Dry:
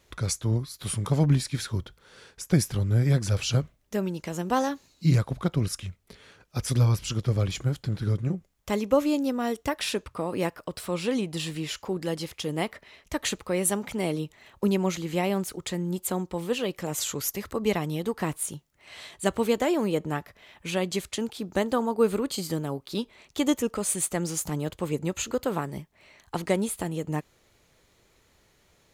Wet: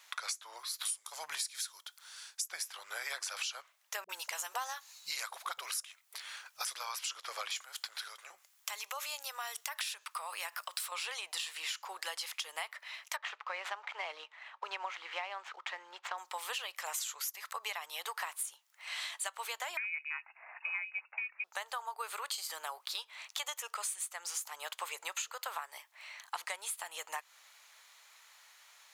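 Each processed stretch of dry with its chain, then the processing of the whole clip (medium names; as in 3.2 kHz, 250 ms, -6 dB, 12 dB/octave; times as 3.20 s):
0.85–2.48 s: tone controls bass +2 dB, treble +12 dB + three bands expanded up and down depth 40%
4.04–6.65 s: treble shelf 6.5 kHz +8 dB + phase dispersion highs, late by 53 ms, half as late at 300 Hz
7.56–10.92 s: compression 3:1, threshold -33 dBFS + tilt EQ +2 dB/octave
13.16–16.18 s: median filter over 9 samples + high-pass 260 Hz + distance through air 160 m
19.77–21.44 s: high-pass 110 Hz + frequency inversion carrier 2.7 kHz
whole clip: inverse Chebyshev high-pass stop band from 260 Hz, stop band 60 dB; compression 12:1, threshold -42 dBFS; trim +6.5 dB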